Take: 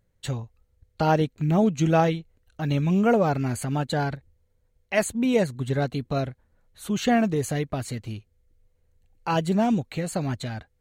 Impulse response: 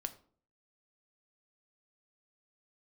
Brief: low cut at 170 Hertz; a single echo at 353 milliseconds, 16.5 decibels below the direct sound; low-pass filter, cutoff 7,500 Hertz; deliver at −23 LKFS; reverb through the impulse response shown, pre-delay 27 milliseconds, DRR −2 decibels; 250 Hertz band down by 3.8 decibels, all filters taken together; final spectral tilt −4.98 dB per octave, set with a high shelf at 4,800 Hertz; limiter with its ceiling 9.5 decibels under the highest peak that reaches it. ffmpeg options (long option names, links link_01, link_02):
-filter_complex "[0:a]highpass=170,lowpass=7500,equalizer=frequency=250:width_type=o:gain=-3,highshelf=frequency=4800:gain=8,alimiter=limit=-17dB:level=0:latency=1,aecho=1:1:353:0.15,asplit=2[link_01][link_02];[1:a]atrim=start_sample=2205,adelay=27[link_03];[link_02][link_03]afir=irnorm=-1:irlink=0,volume=3.5dB[link_04];[link_01][link_04]amix=inputs=2:normalize=0,volume=1.5dB"